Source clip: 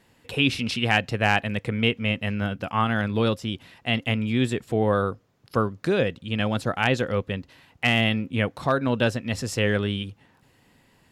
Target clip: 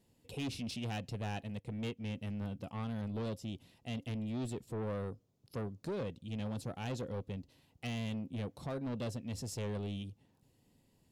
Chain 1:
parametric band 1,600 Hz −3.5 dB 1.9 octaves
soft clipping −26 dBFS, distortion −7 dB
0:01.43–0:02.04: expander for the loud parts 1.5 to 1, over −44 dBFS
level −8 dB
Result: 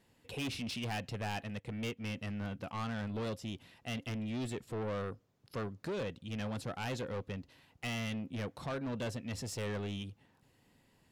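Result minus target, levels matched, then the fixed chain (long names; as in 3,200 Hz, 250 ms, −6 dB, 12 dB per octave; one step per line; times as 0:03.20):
2,000 Hz band +5.5 dB
parametric band 1,600 Hz −15.5 dB 1.9 octaves
soft clipping −26 dBFS, distortion −10 dB
0:01.43–0:02.04: expander for the loud parts 1.5 to 1, over −44 dBFS
level −8 dB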